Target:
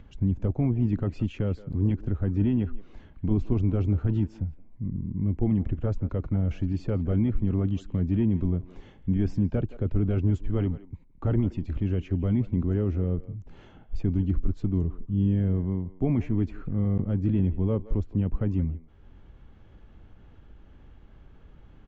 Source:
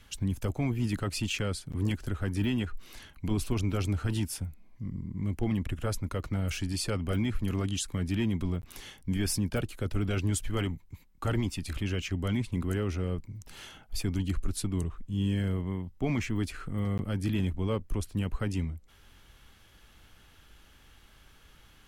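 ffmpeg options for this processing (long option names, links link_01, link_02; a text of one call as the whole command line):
ffmpeg -i in.wav -filter_complex "[0:a]acompressor=mode=upward:threshold=-47dB:ratio=2.5,firequalizer=gain_entry='entry(220,0);entry(1300,-13);entry(5100,-28)':delay=0.05:min_phase=1,asplit=2[link_01][link_02];[link_02]adelay=170,highpass=300,lowpass=3400,asoftclip=type=hard:threshold=-28.5dB,volume=-16dB[link_03];[link_01][link_03]amix=inputs=2:normalize=0,aresample=16000,aresample=44100,volume=5.5dB" out.wav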